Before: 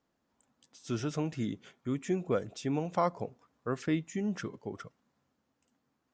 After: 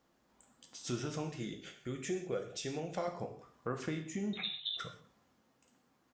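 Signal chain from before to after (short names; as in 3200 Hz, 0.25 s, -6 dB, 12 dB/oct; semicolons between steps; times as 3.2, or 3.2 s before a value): 1.29–3.08 fifteen-band EQ 100 Hz -10 dB, 250 Hz -9 dB, 1000 Hz -12 dB; compressor 2.5:1, threshold -45 dBFS, peak gain reduction 13 dB; 4.33–4.77 inverted band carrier 3900 Hz; bell 110 Hz -2.5 dB 2.4 oct; frequency-shifting echo 0.123 s, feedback 36%, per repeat -31 Hz, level -24 dB; non-linear reverb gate 0.21 s falling, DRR 3.5 dB; gain +5.5 dB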